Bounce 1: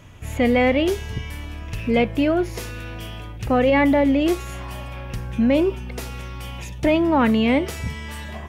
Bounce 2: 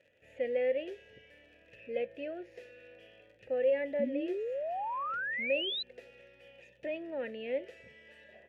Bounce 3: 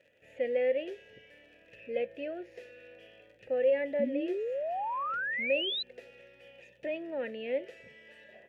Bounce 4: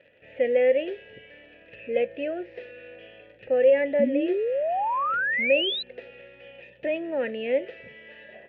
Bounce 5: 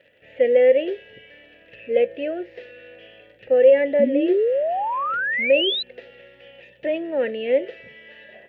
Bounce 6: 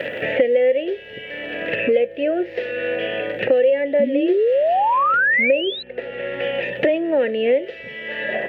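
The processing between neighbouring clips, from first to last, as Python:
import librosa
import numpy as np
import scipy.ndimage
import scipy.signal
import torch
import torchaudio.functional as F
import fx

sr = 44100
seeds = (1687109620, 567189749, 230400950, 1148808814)

y1 = fx.dmg_crackle(x, sr, seeds[0], per_s=54.0, level_db=-28.0)
y1 = fx.vowel_filter(y1, sr, vowel='e')
y1 = fx.spec_paint(y1, sr, seeds[1], shape='rise', start_s=3.99, length_s=1.84, low_hz=220.0, high_hz=4100.0, level_db=-28.0)
y1 = y1 * librosa.db_to_amplitude(-7.5)
y2 = fx.peak_eq(y1, sr, hz=75.0, db=-7.5, octaves=0.69)
y2 = y2 * librosa.db_to_amplitude(2.0)
y3 = scipy.signal.sosfilt(scipy.signal.butter(4, 3500.0, 'lowpass', fs=sr, output='sos'), y2)
y3 = y3 * librosa.db_to_amplitude(8.0)
y4 = fx.high_shelf(y3, sr, hz=3400.0, db=9.5)
y4 = fx.notch(y4, sr, hz=2500.0, q=18.0)
y4 = fx.dynamic_eq(y4, sr, hz=410.0, q=1.2, threshold_db=-35.0, ratio=4.0, max_db=7)
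y5 = fx.band_squash(y4, sr, depth_pct=100)
y5 = y5 * librosa.db_to_amplitude(2.0)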